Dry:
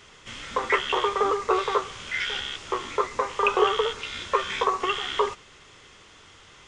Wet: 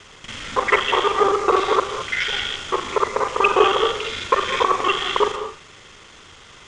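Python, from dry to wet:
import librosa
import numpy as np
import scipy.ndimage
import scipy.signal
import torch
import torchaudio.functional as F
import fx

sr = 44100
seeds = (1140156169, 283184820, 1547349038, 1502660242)

y = fx.local_reverse(x, sr, ms=40.0)
y = fx.rev_gated(y, sr, seeds[0], gate_ms=240, shape='rising', drr_db=9.0)
y = y * librosa.db_to_amplitude(6.0)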